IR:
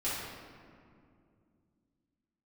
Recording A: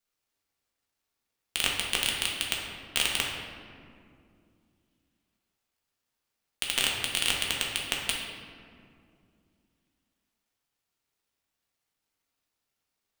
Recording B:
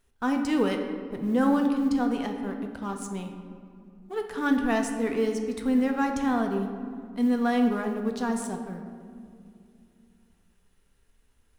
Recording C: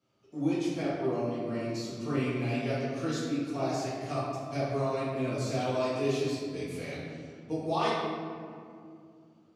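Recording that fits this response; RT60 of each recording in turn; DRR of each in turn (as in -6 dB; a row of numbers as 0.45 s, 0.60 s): C; 2.4 s, 2.5 s, 2.4 s; -2.5 dB, 3.5 dB, -11.0 dB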